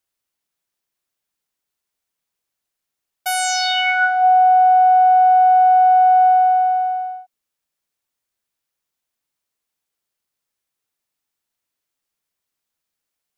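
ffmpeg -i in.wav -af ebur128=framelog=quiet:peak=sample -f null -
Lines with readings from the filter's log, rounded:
Integrated loudness:
  I:         -13.6 LUFS
  Threshold: -24.1 LUFS
Loudness range:
  LRA:        14.1 LU
  Threshold: -36.1 LUFS
  LRA low:   -26.8 LUFS
  LRA high:  -12.8 LUFS
Sample peak:
  Peak:       -7.8 dBFS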